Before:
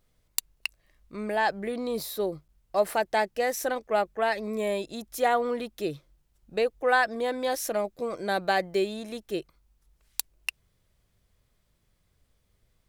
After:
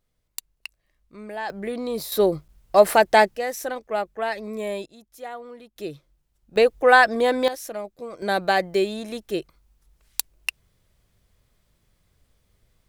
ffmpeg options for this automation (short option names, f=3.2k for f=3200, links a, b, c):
-af "asetnsamples=n=441:p=0,asendcmd='1.5 volume volume 2.5dB;2.12 volume volume 10dB;3.36 volume volume -0.5dB;4.86 volume volume -12dB;5.76 volume volume -2dB;6.56 volume volume 8.5dB;7.48 volume volume -4dB;8.22 volume volume 4.5dB',volume=-5.5dB"